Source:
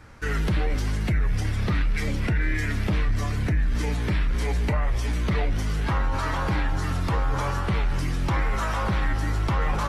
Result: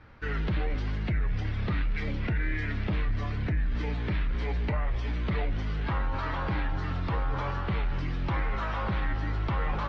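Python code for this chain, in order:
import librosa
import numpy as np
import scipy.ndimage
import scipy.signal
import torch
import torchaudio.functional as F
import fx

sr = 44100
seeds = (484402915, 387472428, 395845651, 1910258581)

y = scipy.signal.sosfilt(scipy.signal.butter(4, 4100.0, 'lowpass', fs=sr, output='sos'), x)
y = y * 10.0 ** (-5.0 / 20.0)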